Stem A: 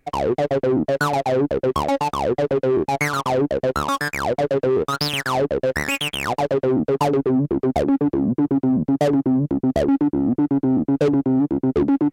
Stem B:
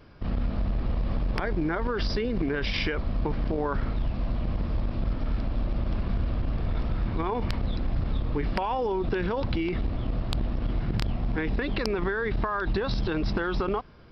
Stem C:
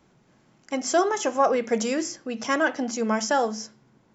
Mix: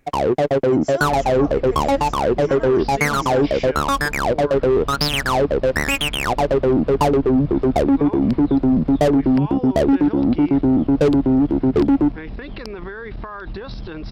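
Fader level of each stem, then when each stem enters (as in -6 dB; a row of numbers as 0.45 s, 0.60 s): +2.5 dB, -4.0 dB, -11.5 dB; 0.00 s, 0.80 s, 0.00 s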